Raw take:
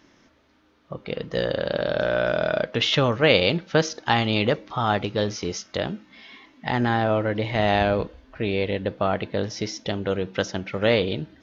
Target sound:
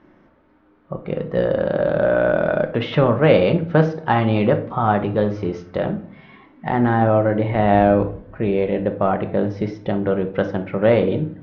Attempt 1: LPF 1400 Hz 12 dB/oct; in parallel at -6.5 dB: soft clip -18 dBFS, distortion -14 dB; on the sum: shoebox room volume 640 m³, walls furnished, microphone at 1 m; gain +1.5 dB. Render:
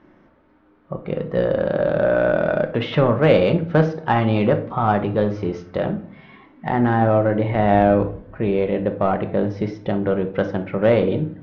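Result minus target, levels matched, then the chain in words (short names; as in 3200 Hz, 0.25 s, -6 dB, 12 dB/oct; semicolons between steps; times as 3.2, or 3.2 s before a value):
soft clip: distortion +13 dB
LPF 1400 Hz 12 dB/oct; in parallel at -6.5 dB: soft clip -9 dBFS, distortion -26 dB; on the sum: shoebox room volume 640 m³, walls furnished, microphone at 1 m; gain +1.5 dB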